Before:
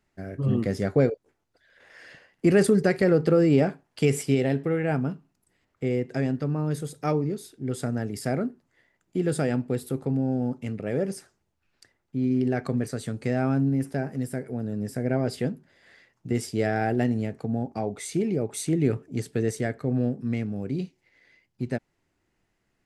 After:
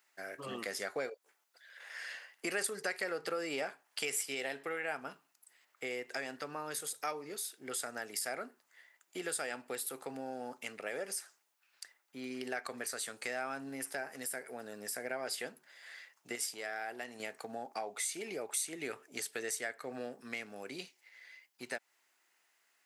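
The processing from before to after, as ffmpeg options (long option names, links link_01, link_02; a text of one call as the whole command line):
ffmpeg -i in.wav -filter_complex "[0:a]asettb=1/sr,asplit=3[link_01][link_02][link_03];[link_01]atrim=end=16.354[link_04];[link_02]atrim=start=16.35:end=17.2,asetpts=PTS-STARTPTS,afade=type=in:duration=0.004:curve=qsin,afade=type=out:start_time=0.846:duration=0.004:curve=qsin,acompressor=threshold=-29dB:ratio=4:attack=3.2:release=140:knee=1:detection=peak[link_05];[link_03]atrim=start=17.196[link_06];[link_04][link_05]acrossfade=duration=0.004:curve1=hsin:curve2=qsin[link_07];[link_07][link_06]acrossfade=duration=0.004:curve1=qsin:curve2=hsin,highpass=980,highshelf=frequency=10000:gain=11.5,acompressor=threshold=-42dB:ratio=2.5,volume=4.5dB" out.wav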